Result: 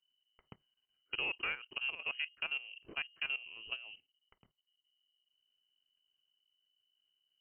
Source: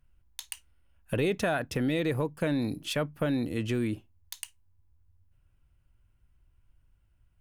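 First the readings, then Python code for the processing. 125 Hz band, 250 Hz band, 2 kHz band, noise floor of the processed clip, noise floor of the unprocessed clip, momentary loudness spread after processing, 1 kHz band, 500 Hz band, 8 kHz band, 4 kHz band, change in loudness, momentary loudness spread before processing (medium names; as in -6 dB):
under -30 dB, -31.5 dB, -1.0 dB, under -85 dBFS, -67 dBFS, 7 LU, -12.0 dB, -24.5 dB, under -35 dB, -0.5 dB, -7.5 dB, 15 LU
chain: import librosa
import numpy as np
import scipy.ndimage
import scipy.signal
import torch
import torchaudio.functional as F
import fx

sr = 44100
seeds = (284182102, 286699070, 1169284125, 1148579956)

y = fx.cheby_harmonics(x, sr, harmonics=(2, 3, 6, 8), levels_db=(-28, -18, -29, -37), full_scale_db=-16.0)
y = fx.freq_invert(y, sr, carrier_hz=3000)
y = fx.level_steps(y, sr, step_db=15)
y = F.gain(torch.from_numpy(y), -5.5).numpy()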